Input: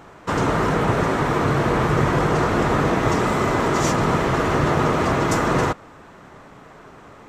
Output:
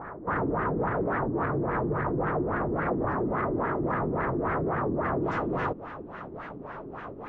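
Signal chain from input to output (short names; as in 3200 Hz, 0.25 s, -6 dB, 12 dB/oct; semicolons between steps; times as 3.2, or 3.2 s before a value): band shelf 4300 Hz -10 dB, from 5.21 s +8 dB; limiter -22.5 dBFS, peak gain reduction 15.5 dB; soft clip -26.5 dBFS, distortion -16 dB; LFO low-pass sine 3.6 Hz 320–1800 Hz; record warp 33 1/3 rpm, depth 160 cents; gain +2 dB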